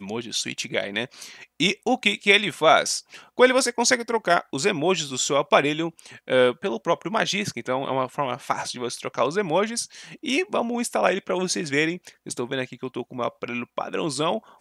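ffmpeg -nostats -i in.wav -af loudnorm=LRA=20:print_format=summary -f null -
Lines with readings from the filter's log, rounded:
Input Integrated:    -23.9 LUFS
Input True Peak:      -2.4 dBTP
Input LRA:             7.2 LU
Input Threshold:     -34.2 LUFS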